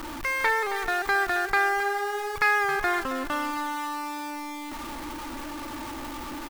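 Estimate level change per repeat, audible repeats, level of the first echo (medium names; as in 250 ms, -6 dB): -13.0 dB, 2, -12.0 dB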